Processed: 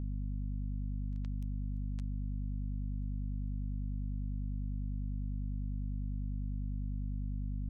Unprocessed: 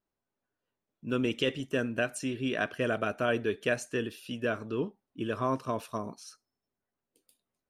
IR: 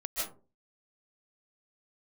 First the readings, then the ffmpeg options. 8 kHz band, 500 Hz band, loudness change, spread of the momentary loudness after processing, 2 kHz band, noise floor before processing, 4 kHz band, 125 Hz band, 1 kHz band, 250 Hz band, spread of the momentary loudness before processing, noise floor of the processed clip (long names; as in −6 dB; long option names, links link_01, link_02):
below −30 dB, below −40 dB, −7.5 dB, 0 LU, below −40 dB, below −85 dBFS, below −30 dB, +4.5 dB, below −40 dB, −8.0 dB, 9 LU, −36 dBFS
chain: -filter_complex "[0:a]acrossover=split=270[link_01][link_02];[link_02]acompressor=threshold=-44dB:ratio=1.5[link_03];[link_01][link_03]amix=inputs=2:normalize=0,acrusher=bits=2:mix=0:aa=0.5,aeval=exprs='val(0)+0.00631*(sin(2*PI*50*n/s)+sin(2*PI*2*50*n/s)/2+sin(2*PI*3*50*n/s)/3+sin(2*PI*4*50*n/s)/4+sin(2*PI*5*50*n/s)/5)':channel_layout=same,volume=9dB"